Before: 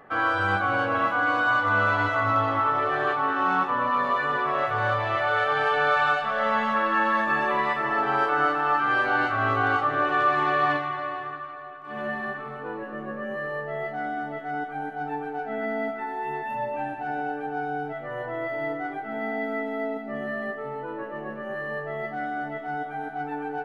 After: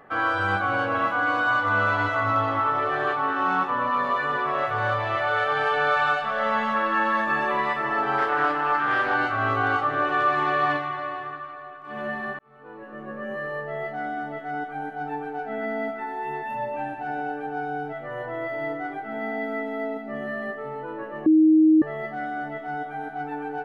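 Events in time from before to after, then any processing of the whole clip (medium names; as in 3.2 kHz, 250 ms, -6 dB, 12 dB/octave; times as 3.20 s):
8.18–9.14 s: loudspeaker Doppler distortion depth 0.16 ms
12.39–13.29 s: fade in linear
21.26–21.82 s: bleep 314 Hz -12.5 dBFS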